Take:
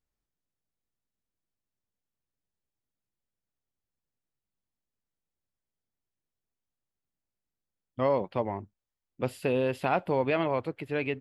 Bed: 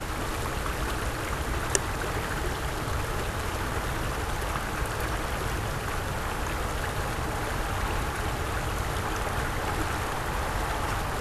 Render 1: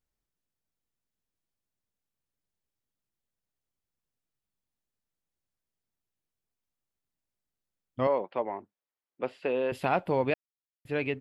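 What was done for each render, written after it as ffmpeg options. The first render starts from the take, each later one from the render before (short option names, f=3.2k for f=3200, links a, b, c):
-filter_complex "[0:a]asettb=1/sr,asplit=3[a][b][c];[a]atrim=end=8.074[d];[b]atrim=start=8.07:end=9.72,asetpts=PTS-STARTPTS,afade=t=in:d=0.004:c=qsin,afade=t=out:st=1.646:d=0.004:c=qsin,highpass=340,lowpass=2.9k[e];[c]atrim=start=9.716[f];[d][e]acrossfade=d=0.004:c1=hsin:c2=qsin[g];[g][f]acrossfade=d=0.004:c1=qsin:c2=hsin,asplit=3[h][i][j];[h]atrim=end=10.34,asetpts=PTS-STARTPTS,afade=t=out:st=10.336:d=0.004:c=hsin[k];[i]atrim=start=10.34:end=10.85,asetpts=PTS-STARTPTS,volume=0[l];[j]atrim=start=10.85,asetpts=PTS-STARTPTS,afade=t=in:d=0.004:c=hsin[m];[k][l][m]concat=n=3:v=0:a=1"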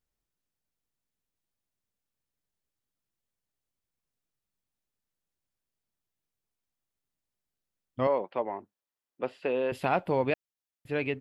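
-filter_complex "[0:a]asettb=1/sr,asplit=3[a][b][c];[a]atrim=end=8.404[d];[b]atrim=start=8.4:end=9.43,asetpts=PTS-STARTPTS,afade=t=in:d=0.004:c=qsin,afade=t=out:st=1.026:d=0.004:c=qsin,bandreject=f=2.2k:w=15[e];[c]atrim=start=9.426[f];[d][e]acrossfade=d=0.004:c1=hsin:c2=qsin[g];[g][f]acrossfade=d=0.004:c1=qsin:c2=hsin"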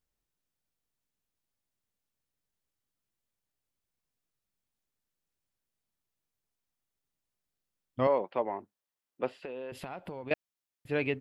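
-filter_complex "[0:a]asettb=1/sr,asplit=3[a][b][c];[a]atrim=end=9.384[d];[b]atrim=start=9.38:end=10.31,asetpts=PTS-STARTPTS,afade=t=in:d=0.004:c=qsin,afade=t=out:st=0.926:d=0.004:c=qsin,acompressor=threshold=-37dB:ratio=8:attack=3.2:release=140:knee=1:detection=peak[e];[c]atrim=start=10.306[f];[d][e]acrossfade=d=0.004:c1=hsin:c2=qsin[g];[g][f]acrossfade=d=0.004:c1=qsin:c2=hsin"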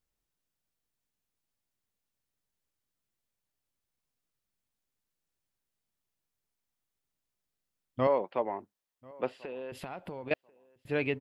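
-filter_complex "[0:a]asplit=2[a][b];[b]adelay=1040,lowpass=f=2.3k:p=1,volume=-24dB,asplit=2[c][d];[d]adelay=1040,lowpass=f=2.3k:p=1,volume=0.22[e];[a][c][e]amix=inputs=3:normalize=0"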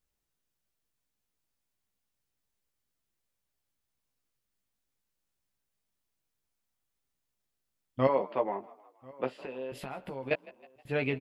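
-filter_complex "[0:a]asplit=2[a][b];[b]adelay=15,volume=-5.5dB[c];[a][c]amix=inputs=2:normalize=0,asplit=5[d][e][f][g][h];[e]adelay=158,afreqshift=48,volume=-21dB[i];[f]adelay=316,afreqshift=96,volume=-27.2dB[j];[g]adelay=474,afreqshift=144,volume=-33.4dB[k];[h]adelay=632,afreqshift=192,volume=-39.6dB[l];[d][i][j][k][l]amix=inputs=5:normalize=0"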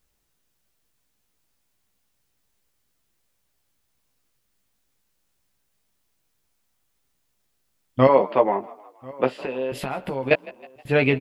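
-af "volume=11.5dB,alimiter=limit=-3dB:level=0:latency=1"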